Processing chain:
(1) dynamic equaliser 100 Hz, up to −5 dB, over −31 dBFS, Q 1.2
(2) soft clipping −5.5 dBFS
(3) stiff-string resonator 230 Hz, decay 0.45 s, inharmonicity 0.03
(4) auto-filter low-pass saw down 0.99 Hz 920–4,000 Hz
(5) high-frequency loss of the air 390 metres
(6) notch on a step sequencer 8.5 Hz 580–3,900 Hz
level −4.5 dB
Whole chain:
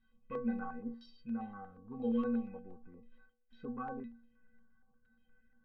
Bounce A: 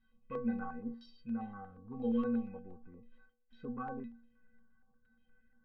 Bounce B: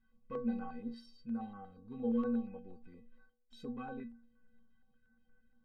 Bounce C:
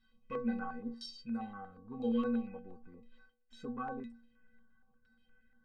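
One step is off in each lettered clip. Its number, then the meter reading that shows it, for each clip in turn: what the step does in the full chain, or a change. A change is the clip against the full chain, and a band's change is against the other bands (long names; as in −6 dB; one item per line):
1, 125 Hz band +2.5 dB
4, 2 kHz band −3.5 dB
5, 2 kHz band +2.0 dB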